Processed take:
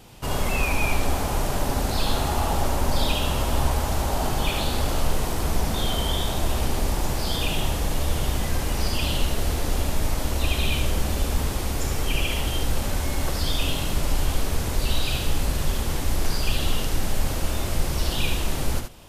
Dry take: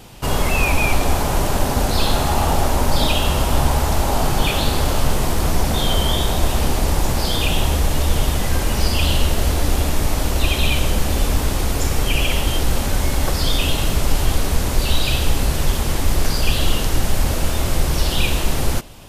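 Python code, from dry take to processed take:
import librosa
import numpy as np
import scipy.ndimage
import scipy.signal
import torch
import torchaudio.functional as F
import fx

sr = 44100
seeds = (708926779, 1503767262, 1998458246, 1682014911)

y = x + 10.0 ** (-6.0 / 20.0) * np.pad(x, (int(74 * sr / 1000.0), 0))[:len(x)]
y = y * librosa.db_to_amplitude(-7.0)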